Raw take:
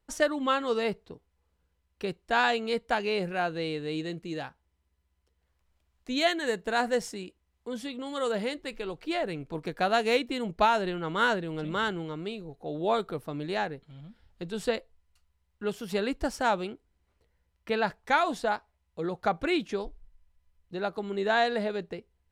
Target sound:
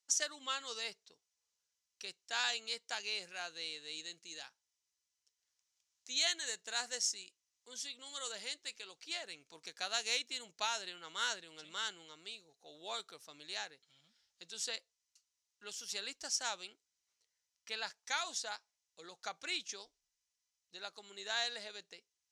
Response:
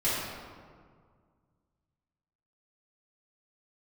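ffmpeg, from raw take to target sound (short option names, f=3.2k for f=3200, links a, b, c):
-af "bandpass=f=6.1k:t=q:w=3.3:csg=0,volume=10.5dB"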